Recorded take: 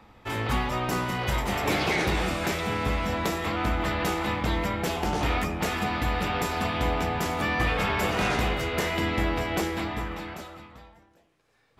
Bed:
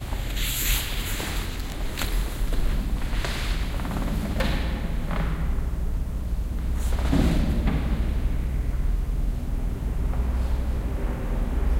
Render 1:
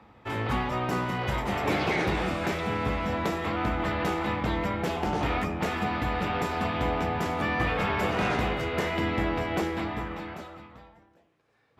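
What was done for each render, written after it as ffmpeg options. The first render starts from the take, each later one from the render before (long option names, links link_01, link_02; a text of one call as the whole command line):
ffmpeg -i in.wav -af "highpass=68,highshelf=frequency=4200:gain=-11.5" out.wav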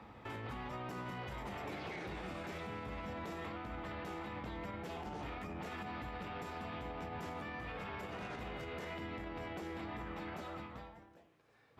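ffmpeg -i in.wav -af "acompressor=threshold=-39dB:ratio=3,alimiter=level_in=11.5dB:limit=-24dB:level=0:latency=1:release=76,volume=-11.5dB" out.wav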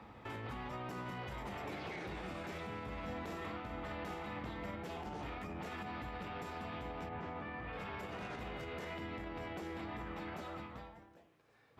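ffmpeg -i in.wav -filter_complex "[0:a]asettb=1/sr,asplit=3[link_01][link_02][link_03];[link_01]atrim=end=2.974[link_04];[link_02]atrim=start=2.97:end=4.76,asetpts=PTS-STARTPTS,afade=type=in:duration=0.004:curve=qsin,afade=type=out:start_time=1.786:duration=0.004:curve=qsin,asplit=2[link_05][link_06];[link_06]adelay=44,volume=-6dB[link_07];[link_05][link_07]amix=inputs=2:normalize=0,atrim=end_sample=78939[link_08];[link_03]atrim=start=4.756[link_09];[link_04][link_08]acrossfade=duration=0.004:curve1=hsin:curve2=qsin[link_10];[link_10][link_09]acrossfade=duration=0.004:curve1=qsin:curve2=hsin,asettb=1/sr,asplit=3[link_11][link_12][link_13];[link_11]atrim=end=7.094[link_14];[link_12]atrim=start=7.09:end=7.73,asetpts=PTS-STARTPTS,afade=type=in:duration=0.004:curve=qsin,afade=type=out:start_time=0.636:duration=0.004:curve=qsin,lowpass=2700[link_15];[link_13]atrim=start=7.726[link_16];[link_14][link_15]acrossfade=duration=0.004:curve1=hsin:curve2=qsin[link_17];[link_17][link_16]acrossfade=duration=0.004:curve1=qsin:curve2=hsin" out.wav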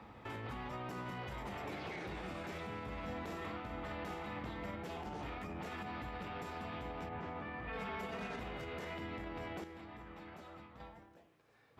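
ffmpeg -i in.wav -filter_complex "[0:a]asettb=1/sr,asplit=3[link_01][link_02][link_03];[link_01]atrim=end=7.674[link_04];[link_02]atrim=start=7.67:end=8.4,asetpts=PTS-STARTPTS,afade=type=in:duration=0.004:curve=qsin,afade=type=out:start_time=0.726:duration=0.004:curve=qsin,aecho=1:1:4.5:0.65,atrim=end_sample=32193[link_05];[link_03]atrim=start=8.396[link_06];[link_04][link_05]acrossfade=duration=0.004:curve1=hsin:curve2=qsin[link_07];[link_07][link_06]acrossfade=duration=0.004:curve1=qsin:curve2=hsin,asplit=3[link_08][link_09][link_10];[link_08]atrim=end=9.642[link_11];[link_09]atrim=start=9.638:end=10.802,asetpts=PTS-STARTPTS,volume=-7.5dB[link_12];[link_10]atrim=start=10.798[link_13];[link_11][link_12]acrossfade=duration=0.004:curve1=hsin:curve2=hsin[link_14];[link_14][link_13]acrossfade=duration=0.004:curve1=hsin:curve2=hsin" out.wav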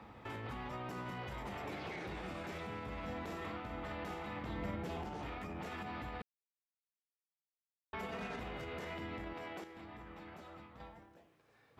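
ffmpeg -i in.wav -filter_complex "[0:a]asettb=1/sr,asplit=3[link_01][link_02][link_03];[link_01]atrim=end=4.494[link_04];[link_02]atrim=start=4.49:end=5.05,asetpts=PTS-STARTPTS,afade=type=in:duration=0.004:curve=qsin,afade=type=out:start_time=0.556:duration=0.004:curve=qsin,lowshelf=frequency=370:gain=6[link_05];[link_03]atrim=start=5.046[link_06];[link_04][link_05]acrossfade=duration=0.004:curve1=hsin:curve2=qsin[link_07];[link_07][link_06]acrossfade=duration=0.004:curve1=qsin:curve2=hsin,asettb=1/sr,asplit=3[link_08][link_09][link_10];[link_08]atrim=end=9.334[link_11];[link_09]atrim=start=9.33:end=9.77,asetpts=PTS-STARTPTS,afade=type=in:duration=0.004:curve=qsin,afade=type=out:start_time=0.436:duration=0.004:curve=qsin,highpass=frequency=320:poles=1[link_12];[link_10]atrim=start=9.766[link_13];[link_11][link_12]acrossfade=duration=0.004:curve1=hsin:curve2=qsin[link_14];[link_14][link_13]acrossfade=duration=0.004:curve1=qsin:curve2=hsin,asplit=3[link_15][link_16][link_17];[link_15]atrim=end=6.22,asetpts=PTS-STARTPTS,afade=type=out:start_time=6.216:duration=0.004:curve=hsin[link_18];[link_16]atrim=start=6.22:end=7.93,asetpts=PTS-STARTPTS,volume=0[link_19];[link_17]atrim=start=7.93,asetpts=PTS-STARTPTS,afade=type=in:duration=0.004:curve=hsin[link_20];[link_18][link_19][link_20]concat=n=3:v=0:a=1" out.wav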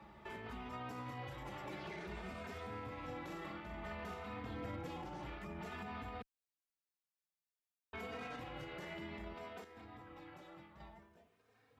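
ffmpeg -i in.wav -filter_complex "[0:a]volume=34.5dB,asoftclip=hard,volume=-34.5dB,asplit=2[link_01][link_02];[link_02]adelay=3,afreqshift=0.56[link_03];[link_01][link_03]amix=inputs=2:normalize=1" out.wav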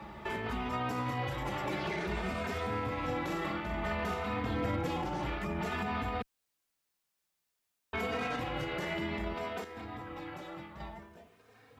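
ffmpeg -i in.wav -af "volume=11.5dB" out.wav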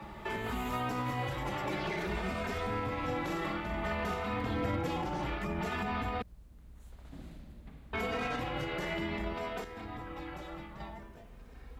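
ffmpeg -i in.wav -i bed.wav -filter_complex "[1:a]volume=-27dB[link_01];[0:a][link_01]amix=inputs=2:normalize=0" out.wav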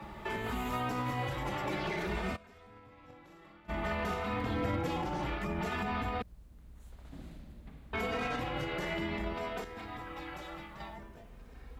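ffmpeg -i in.wav -filter_complex "[0:a]asplit=3[link_01][link_02][link_03];[link_01]afade=type=out:start_time=2.35:duration=0.02[link_04];[link_02]agate=range=-21dB:threshold=-31dB:ratio=16:release=100:detection=peak,afade=type=in:start_time=2.35:duration=0.02,afade=type=out:start_time=3.68:duration=0.02[link_05];[link_03]afade=type=in:start_time=3.68:duration=0.02[link_06];[link_04][link_05][link_06]amix=inputs=3:normalize=0,asettb=1/sr,asplit=3[link_07][link_08][link_09];[link_07]atrim=end=9.784[link_10];[link_08]atrim=start=9.78:end=10.96,asetpts=PTS-STARTPTS,afade=type=in:duration=0.004:curve=qsin,afade=type=out:start_time=1.176:duration=0.004:curve=qsin,tiltshelf=frequency=720:gain=-3.5[link_11];[link_09]atrim=start=10.956[link_12];[link_10][link_11]acrossfade=duration=0.004:curve1=hsin:curve2=qsin[link_13];[link_13][link_12]acrossfade=duration=0.004:curve1=qsin:curve2=hsin" out.wav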